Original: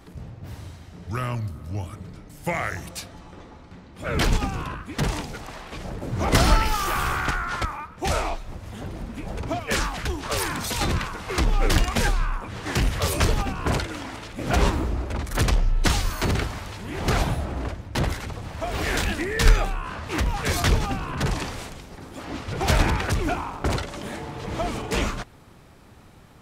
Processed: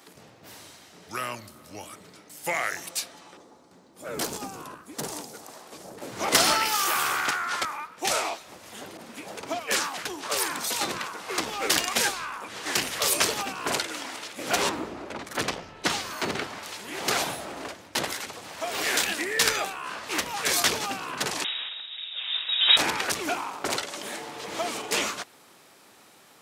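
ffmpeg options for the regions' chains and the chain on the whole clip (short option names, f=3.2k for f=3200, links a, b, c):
-filter_complex "[0:a]asettb=1/sr,asplit=3[a][b][c];[a]atrim=end=3.374[d];[b]atrim=start=3.37:end=5.98,asetpts=PTS-STARTPTS,afade=t=in:d=0.004:c=qsin,afade=t=out:st=2.606:d=0.004:c=qsin,equalizer=f=2.5k:w=0.59:g=-13.5,volume=15.5dB,asoftclip=hard,volume=-15.5dB[e];[c]atrim=start=5.976[f];[d][e]acrossfade=d=0.004:c1=hsin:c2=qsin[g];[g][f]acrossfade=d=0.004:c1=qsin:c2=hsin,asettb=1/sr,asplit=3[h][i][j];[h]atrim=end=8.974[k];[i]atrim=start=8.97:end=11.44,asetpts=PTS-STARTPTS,afade=t=in:d=0.004:c=qsin,afade=t=out:st=2.466:d=0.004:c=qsin,highpass=72,adynamicequalizer=threshold=0.00891:dfrequency=1600:dqfactor=0.7:tfrequency=1600:tqfactor=0.7:attack=5:release=100:ratio=0.375:range=2.5:mode=cutabove:tftype=highshelf[l];[j]atrim=start=11.436[m];[k][l]acrossfade=d=0.004:c1=hsin:c2=qsin[n];[n][m]acrossfade=d=0.004:c1=qsin:c2=hsin,asettb=1/sr,asplit=3[o][p][q];[o]atrim=end=14.694[r];[p]atrim=start=14.69:end=16.63,asetpts=PTS-STARTPTS,afade=t=in:d=0.004:c=qsin,afade=t=out:st=1.936:d=0.004:c=qsin,lowpass=f=2.5k:p=1,equalizer=f=160:w=0.65:g=3.5[s];[q]atrim=start=16.626[t];[r][s]acrossfade=d=0.004:c1=hsin:c2=qsin[u];[u][t]acrossfade=d=0.004:c1=qsin:c2=hsin,asettb=1/sr,asplit=3[v][w][x];[v]atrim=end=21.444[y];[w]atrim=start=21.44:end=22.77,asetpts=PTS-STARTPTS,afade=t=in:d=0.004:c=qsin,afade=t=out:st=1.326:d=0.004:c=qsin,highpass=72,asplit=2[z][aa];[aa]adelay=39,volume=-13.5dB[ab];[z][ab]amix=inputs=2:normalize=0,atrim=end_sample=58653,lowpass=f=3.3k:t=q:w=0.5098,lowpass=f=3.3k:t=q:w=0.6013,lowpass=f=3.3k:t=q:w=0.9,lowpass=f=3.3k:t=q:w=2.563,afreqshift=-3900[ac];[x]atrim=start=22.766[ad];[y][ac]acrossfade=d=0.004:c1=hsin:c2=qsin[ae];[ae][ad]acrossfade=d=0.004:c1=qsin:c2=hsin,highpass=330,highshelf=f=2.8k:g=10,volume=-2.5dB"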